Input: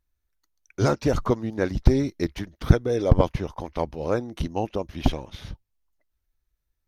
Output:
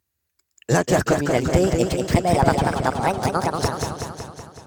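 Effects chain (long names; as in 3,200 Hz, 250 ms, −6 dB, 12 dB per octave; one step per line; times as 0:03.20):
gliding playback speed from 108% → 187%
high-pass filter 79 Hz 24 dB per octave
high-shelf EQ 5,900 Hz +8.5 dB
in parallel at −1 dB: brickwall limiter −11 dBFS, peak gain reduction 9.5 dB
on the sum: asymmetric clip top −13 dBFS
feedback echo with a swinging delay time 187 ms, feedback 63%, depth 117 cents, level −4.5 dB
level −1.5 dB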